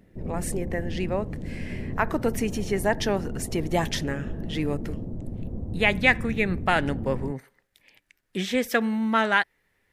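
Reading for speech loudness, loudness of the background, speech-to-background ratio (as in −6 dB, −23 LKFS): −26.5 LKFS, −35.0 LKFS, 8.5 dB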